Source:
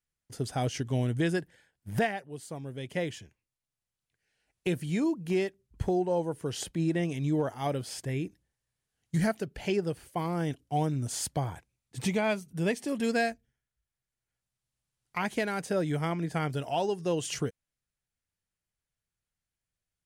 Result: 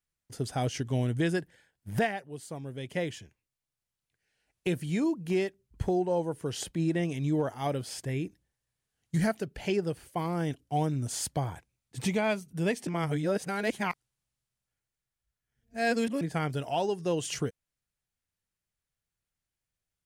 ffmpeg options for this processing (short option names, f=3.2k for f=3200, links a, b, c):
-filter_complex "[0:a]asplit=3[a][b][c];[a]atrim=end=12.872[d];[b]atrim=start=12.868:end=16.212,asetpts=PTS-STARTPTS,areverse[e];[c]atrim=start=16.208[f];[d][e]acrossfade=d=0.004:c1=hsin:c2=hsin[g];[g][f]acrossfade=d=0.004:c1=hsin:c2=hsin"